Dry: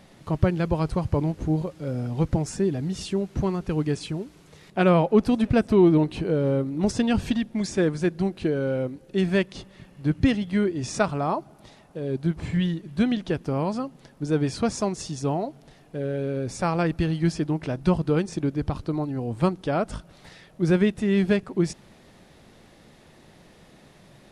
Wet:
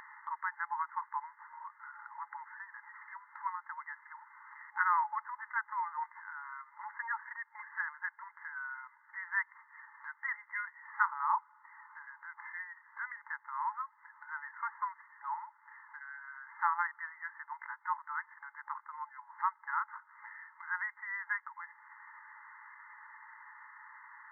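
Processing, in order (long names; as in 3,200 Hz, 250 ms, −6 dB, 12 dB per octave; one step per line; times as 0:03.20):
brick-wall band-pass 850–2,100 Hz
upward compression, threshold −43 dBFS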